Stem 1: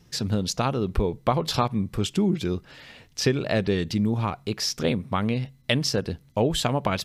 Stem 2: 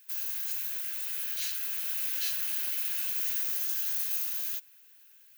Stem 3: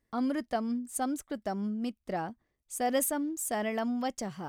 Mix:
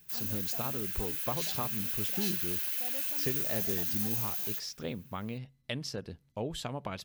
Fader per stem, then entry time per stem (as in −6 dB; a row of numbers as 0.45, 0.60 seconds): −13.5, −2.0, −18.5 decibels; 0.00, 0.00, 0.00 seconds